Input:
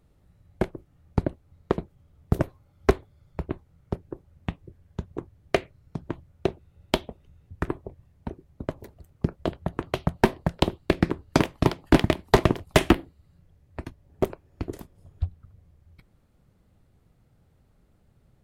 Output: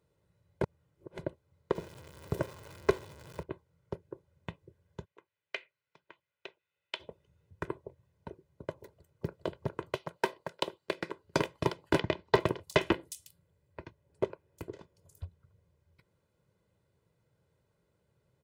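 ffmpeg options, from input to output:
-filter_complex "[0:a]asettb=1/sr,asplit=3[a][b][c];[a]atrim=end=1.754[d];[b]atrim=start=1.75:end=3.43,asetpts=PTS-STARTPTS,afade=t=in:d=0.004:c=qsin,afade=t=out:st=1.676:d=0.004:c=qsin,aeval=exprs='val(0)+0.5*0.0188*sgn(val(0))':c=same[e];[c]atrim=start=3.426[f];[d][e]acrossfade=d=0.004:c1=hsin:c2=qsin[g];[g][f]acrossfade=d=0.004:c1=qsin:c2=hsin,asplit=3[h][i][j];[h]afade=t=out:st=5.04:d=0.02[k];[i]bandpass=f=2.5k:t=q:w=1.5,afade=t=in:st=5.04:d=0.02,afade=t=out:st=6.99:d=0.02[l];[j]afade=t=in:st=6.99:d=0.02[m];[k][l][m]amix=inputs=3:normalize=0,asplit=2[n][o];[o]afade=t=in:st=8.8:d=0.01,afade=t=out:st=9.38:d=0.01,aecho=0:1:410|820|1230|1640|2050|2460:0.841395|0.378628|0.170383|0.0766721|0.0345025|0.0155261[p];[n][p]amix=inputs=2:normalize=0,asettb=1/sr,asplit=3[q][r][s];[q]atrim=end=9.964[t];[r]atrim=start=9.96:end=11.24,asetpts=PTS-STARTPTS,afade=t=in:d=0.004:c=qsin,afade=t=out:st=1.276:d=0.004:c=qsin,highpass=f=580:p=1[u];[s]atrim=start=11.236[v];[t][u]acrossfade=d=0.004:c1=hsin:c2=qsin[w];[w][v]acrossfade=d=0.004:c1=qsin:c2=hsin,asettb=1/sr,asplit=3[x][y][z];[x]atrim=end=11.994[aa];[y]atrim=start=11.99:end=15.23,asetpts=PTS-STARTPTS,afade=t=in:d=0.004:c=qsin,afade=t=out:st=3.236:d=0.004:c=qsin,acrossover=split=5800[ab][ac];[ac]adelay=360[ad];[ab][ad]amix=inputs=2:normalize=0,atrim=end_sample=142884[ae];[z]atrim=start=15.226[af];[aa][ae]acrossfade=d=0.004:c1=hsin:c2=qsin[ag];[ag][af]acrossfade=d=0.004:c1=qsin:c2=hsin,asplit=3[ah][ai][aj];[ah]atrim=end=0.632[ak];[ai]atrim=start=0.628:end=1.192,asetpts=PTS-STARTPTS,areverse[al];[aj]atrim=start=1.188[am];[ak][al]acrossfade=d=0.004:c1=hsin:c2=hsin[an];[an][am]acrossfade=d=0.004:c1=hsin:c2=hsin,highpass=140,equalizer=f=12k:t=o:w=0.25:g=-7,aecho=1:1:2:0.61,volume=-8dB"

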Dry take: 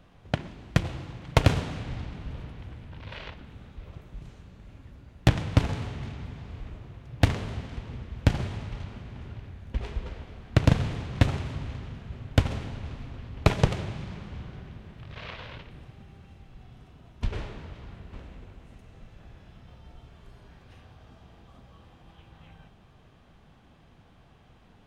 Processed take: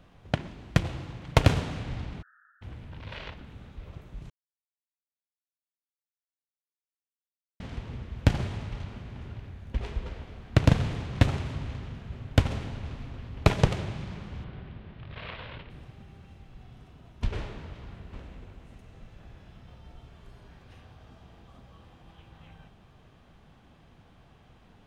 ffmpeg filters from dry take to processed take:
-filter_complex "[0:a]asplit=3[a][b][c];[a]afade=t=out:st=2.21:d=0.02[d];[b]asuperpass=centerf=1500:order=20:qfactor=2.7,afade=t=in:st=2.21:d=0.02,afade=t=out:st=2.61:d=0.02[e];[c]afade=t=in:st=2.61:d=0.02[f];[d][e][f]amix=inputs=3:normalize=0,asettb=1/sr,asplit=3[g][h][i];[g]atrim=end=14.444[j];[h]atrim=start=14.44:end=15.7,asetpts=PTS-STARTPTS,afade=t=in:d=0.004:c=qsin,afade=t=out:st=1.256:d=0.004:c=qsin,lowpass=f=4.1k:w=0.5412,lowpass=f=4.1k:w=1.3066[k];[i]atrim=start=15.696[l];[j][k]acrossfade=d=0.004:c1=hsin:c2=qsin[m];[m][l]acrossfade=d=0.004:c1=qsin:c2=hsin,asplit=3[n][o][p];[n]atrim=end=4.3,asetpts=PTS-STARTPTS,afade=t=out:st=4.296:d=0.004:c=hsin[q];[o]atrim=start=4.3:end=7.6,asetpts=PTS-STARTPTS,volume=0[r];[p]atrim=start=7.6,asetpts=PTS-STARTPTS,afade=t=in:d=0.004:c=hsin[s];[q][r][s]concat=n=3:v=0:a=1"

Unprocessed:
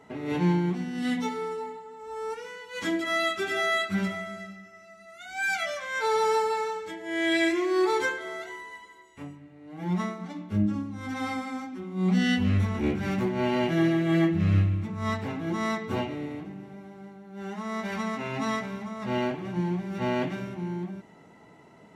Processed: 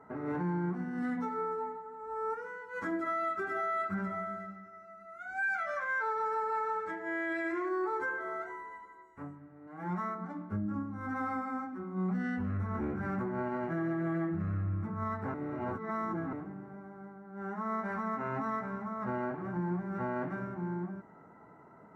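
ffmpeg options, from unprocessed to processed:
-filter_complex "[0:a]asettb=1/sr,asplit=3[a][b][c];[a]atrim=end=5.424[d];[b]atrim=start=5.42:end=7.69,asetpts=PTS-STARTPTS,afade=t=in:d=0.004:c=qsin,afade=t=out:st=2.266:d=0.004:c=qsin,equalizer=f=2.7k:w=0.46:g=6.5[e];[c]atrim=start=7.686[f];[d][e]acrossfade=d=0.004:c1=hsin:c2=qsin[g];[g][f]acrossfade=d=0.004:c1=qsin:c2=hsin,asettb=1/sr,asplit=3[h][i][j];[h]atrim=end=9.674[k];[i]atrim=start=9.67:end=10.15,asetpts=PTS-STARTPTS,afade=t=in:d=0.004:c=qsin,afade=t=out:st=0.476:d=0.004:c=qsin,tiltshelf=f=750:g=-5[l];[j]atrim=start=10.146[m];[k][l]acrossfade=d=0.004:c1=hsin:c2=qsin[n];[n][m]acrossfade=d=0.004:c1=qsin:c2=hsin,asplit=3[o][p][q];[o]atrim=end=15.342[r];[p]atrim=start=15.338:end=16.332,asetpts=PTS-STARTPTS,areverse[s];[q]atrim=start=16.328[t];[r][s]acrossfade=d=0.004:c1=hsin:c2=hsin[u];[u][t]acrossfade=d=0.004:c1=hsin:c2=hsin,highshelf=f=2.1k:t=q:w=3:g=-14,alimiter=limit=-22.5dB:level=0:latency=1:release=135,volume=-4dB"

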